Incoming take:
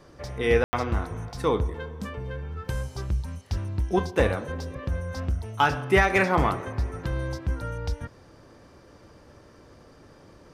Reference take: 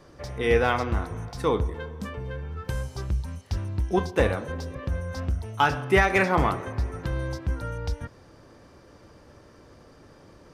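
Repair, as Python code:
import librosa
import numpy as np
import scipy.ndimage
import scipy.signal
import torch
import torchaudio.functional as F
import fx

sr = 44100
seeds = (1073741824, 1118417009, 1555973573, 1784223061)

y = fx.fix_ambience(x, sr, seeds[0], print_start_s=8.53, print_end_s=9.03, start_s=0.64, end_s=0.73)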